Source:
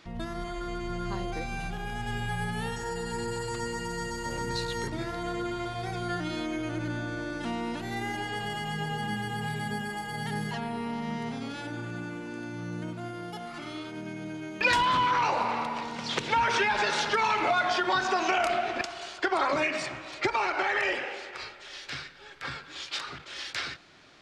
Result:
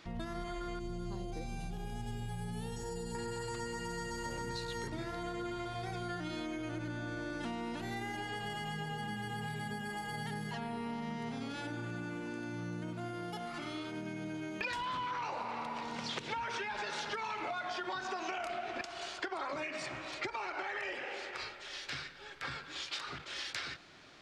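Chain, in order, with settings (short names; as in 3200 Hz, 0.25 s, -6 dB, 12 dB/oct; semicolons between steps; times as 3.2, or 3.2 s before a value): 0.79–3.15 bell 1600 Hz -13 dB 1.9 oct; compressor 6:1, threshold -35 dBFS, peak gain reduction 14 dB; gain -1.5 dB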